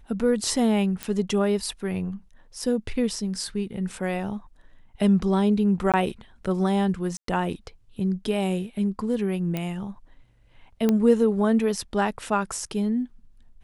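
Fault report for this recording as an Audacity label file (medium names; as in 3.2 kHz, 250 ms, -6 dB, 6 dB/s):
1.030000	1.030000	pop -13 dBFS
5.920000	5.940000	dropout 17 ms
7.170000	7.280000	dropout 113 ms
9.570000	9.570000	pop -15 dBFS
10.890000	10.890000	pop -10 dBFS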